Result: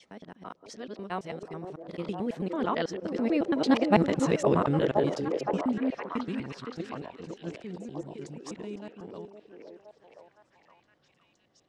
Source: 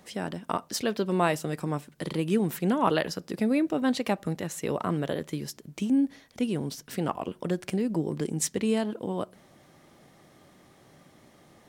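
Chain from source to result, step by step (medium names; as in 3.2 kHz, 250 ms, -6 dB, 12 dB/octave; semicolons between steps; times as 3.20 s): time reversed locally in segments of 117 ms; Doppler pass-by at 4.28 s, 21 m/s, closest 9.1 m; Bessel low-pass 4.9 kHz, order 4; in parallel at 0 dB: level held to a coarse grid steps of 14 dB; on the sum: repeats whose band climbs or falls 515 ms, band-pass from 410 Hz, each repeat 0.7 oct, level -1 dB; trim +3.5 dB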